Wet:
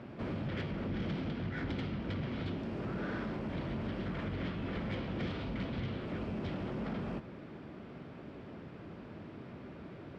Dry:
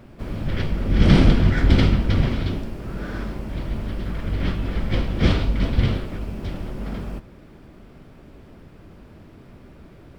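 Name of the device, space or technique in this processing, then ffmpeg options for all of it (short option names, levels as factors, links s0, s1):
AM radio: -af "highpass=120,lowpass=3700,acompressor=threshold=0.0251:ratio=10,asoftclip=type=tanh:threshold=0.0335"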